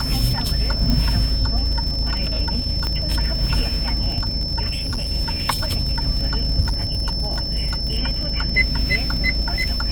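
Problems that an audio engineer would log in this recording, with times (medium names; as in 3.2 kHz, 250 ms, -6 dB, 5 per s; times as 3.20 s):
crackle 60 per s -25 dBFS
whine 5.3 kHz -25 dBFS
0.90 s: pop -8 dBFS
2.87 s: pop -11 dBFS
4.69–5.10 s: clipped -20.5 dBFS
6.60–7.97 s: clipped -17 dBFS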